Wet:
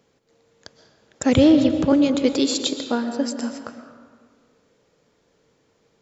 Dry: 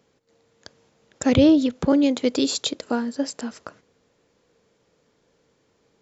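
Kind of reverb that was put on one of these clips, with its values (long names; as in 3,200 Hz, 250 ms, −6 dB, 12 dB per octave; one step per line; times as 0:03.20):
comb and all-pass reverb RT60 1.7 s, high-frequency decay 0.6×, pre-delay 85 ms, DRR 7.5 dB
level +1 dB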